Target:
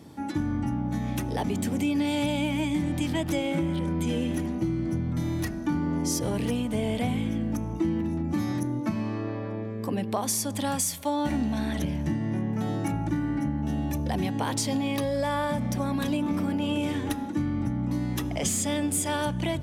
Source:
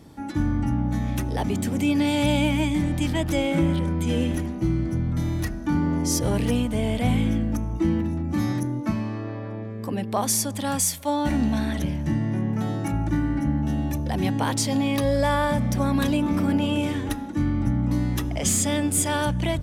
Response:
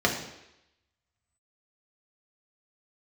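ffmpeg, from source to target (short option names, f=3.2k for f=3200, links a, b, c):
-filter_complex "[0:a]highpass=80,acompressor=threshold=-24dB:ratio=6,asplit=2[a][b];[1:a]atrim=start_sample=2205,asetrate=27342,aresample=44100[c];[b][c]afir=irnorm=-1:irlink=0,volume=-34.5dB[d];[a][d]amix=inputs=2:normalize=0"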